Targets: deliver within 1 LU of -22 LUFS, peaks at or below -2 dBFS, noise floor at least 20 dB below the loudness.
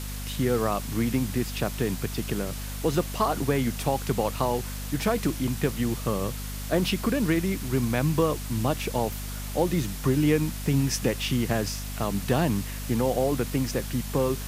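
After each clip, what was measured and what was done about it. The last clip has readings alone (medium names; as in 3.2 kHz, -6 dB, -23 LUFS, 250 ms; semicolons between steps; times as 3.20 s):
hum 50 Hz; highest harmonic 250 Hz; hum level -32 dBFS; noise floor -34 dBFS; noise floor target -47 dBFS; loudness -27.0 LUFS; peak level -10.0 dBFS; loudness target -22.0 LUFS
-> de-hum 50 Hz, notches 5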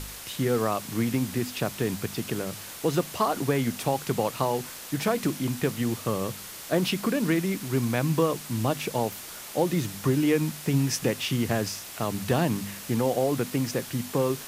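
hum not found; noise floor -41 dBFS; noise floor target -48 dBFS
-> noise reduction 7 dB, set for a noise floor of -41 dBFS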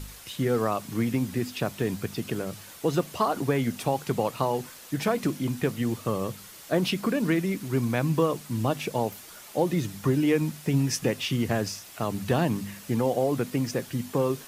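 noise floor -46 dBFS; noise floor target -48 dBFS
-> noise reduction 6 dB, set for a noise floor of -46 dBFS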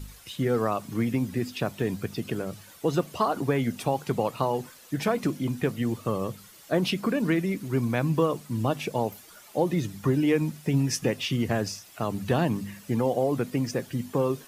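noise floor -51 dBFS; loudness -28.0 LUFS; peak level -10.5 dBFS; loudness target -22.0 LUFS
-> trim +6 dB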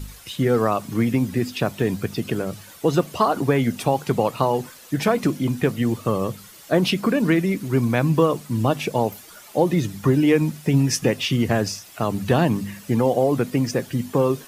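loudness -22.0 LUFS; peak level -4.5 dBFS; noise floor -45 dBFS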